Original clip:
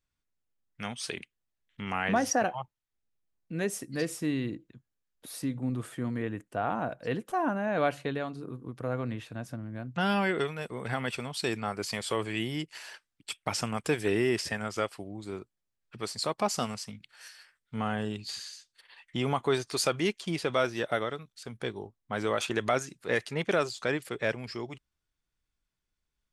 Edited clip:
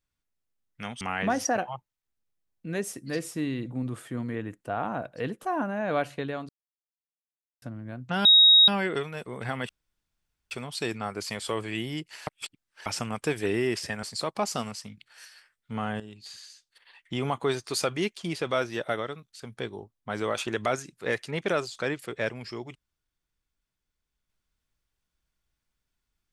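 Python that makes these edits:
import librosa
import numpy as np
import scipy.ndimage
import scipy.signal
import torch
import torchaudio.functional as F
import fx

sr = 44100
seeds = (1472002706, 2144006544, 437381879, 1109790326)

y = fx.edit(x, sr, fx.cut(start_s=1.01, length_s=0.86),
    fx.cut(start_s=4.52, length_s=1.01),
    fx.silence(start_s=8.36, length_s=1.13),
    fx.insert_tone(at_s=10.12, length_s=0.43, hz=3780.0, db=-12.5),
    fx.insert_room_tone(at_s=11.13, length_s=0.82),
    fx.reverse_span(start_s=12.89, length_s=0.59),
    fx.cut(start_s=14.65, length_s=1.41),
    fx.fade_in_from(start_s=18.03, length_s=1.39, curve='qsin', floor_db=-12.0), tone=tone)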